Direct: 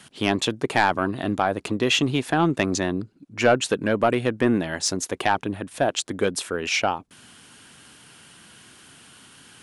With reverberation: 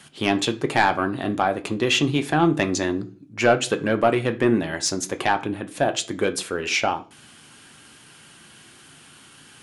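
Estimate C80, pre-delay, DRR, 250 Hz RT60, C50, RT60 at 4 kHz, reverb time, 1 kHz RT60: 22.0 dB, 3 ms, 6.0 dB, 0.50 s, 16.5 dB, 0.40 s, 0.40 s, 0.35 s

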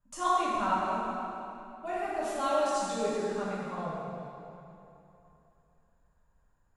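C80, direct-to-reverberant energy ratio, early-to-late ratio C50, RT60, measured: -2.0 dB, -10.0 dB, -4.0 dB, 2.9 s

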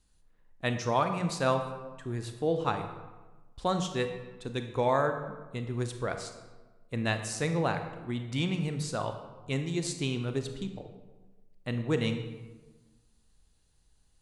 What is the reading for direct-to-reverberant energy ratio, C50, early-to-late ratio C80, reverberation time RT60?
6.5 dB, 8.0 dB, 9.5 dB, 1.3 s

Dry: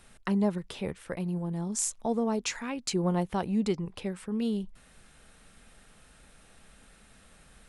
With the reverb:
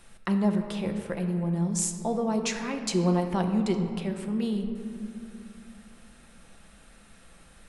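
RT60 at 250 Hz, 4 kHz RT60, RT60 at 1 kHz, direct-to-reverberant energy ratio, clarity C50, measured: 3.5 s, 1.3 s, 2.7 s, 4.5 dB, 6.5 dB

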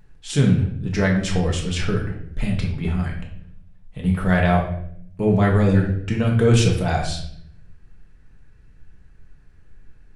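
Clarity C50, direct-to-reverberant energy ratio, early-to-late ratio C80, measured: 6.0 dB, -1.0 dB, 9.5 dB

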